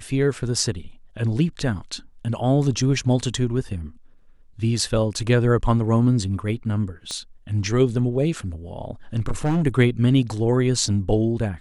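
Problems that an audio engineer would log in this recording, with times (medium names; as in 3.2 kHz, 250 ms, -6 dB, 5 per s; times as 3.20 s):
7.11 s: pop -18 dBFS
9.18–9.63 s: clipped -17 dBFS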